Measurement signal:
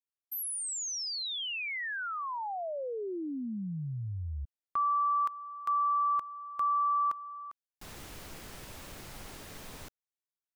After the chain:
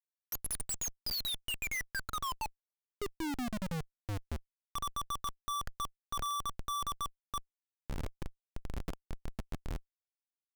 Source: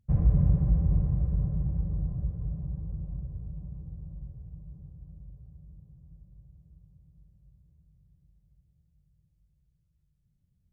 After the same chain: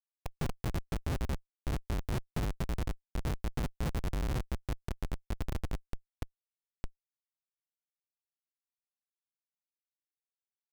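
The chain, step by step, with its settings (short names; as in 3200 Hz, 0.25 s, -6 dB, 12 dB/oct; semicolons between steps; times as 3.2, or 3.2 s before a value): random spectral dropouts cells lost 63%; power-law curve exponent 0.7; Schmitt trigger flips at -36.5 dBFS; gain +2.5 dB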